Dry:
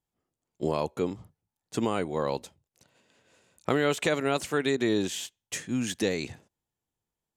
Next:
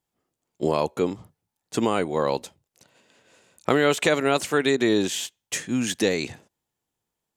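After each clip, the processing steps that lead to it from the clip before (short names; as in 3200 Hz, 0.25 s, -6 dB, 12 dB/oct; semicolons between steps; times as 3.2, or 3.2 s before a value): low shelf 120 Hz -8 dB; gain +6 dB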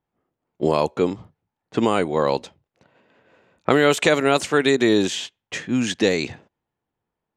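low-pass opened by the level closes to 1900 Hz, open at -16 dBFS; gain +3.5 dB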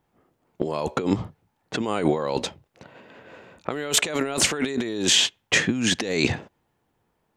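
negative-ratio compressor -28 dBFS, ratio -1; gain +3.5 dB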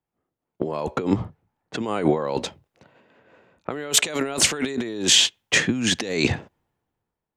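three-band expander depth 40%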